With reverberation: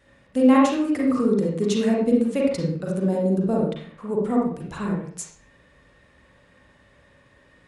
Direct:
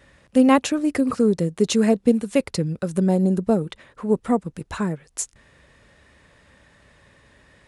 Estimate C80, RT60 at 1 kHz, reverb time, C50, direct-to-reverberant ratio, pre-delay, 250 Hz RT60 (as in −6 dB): 5.0 dB, 0.50 s, 0.50 s, 0.5 dB, −3.0 dB, 37 ms, 0.60 s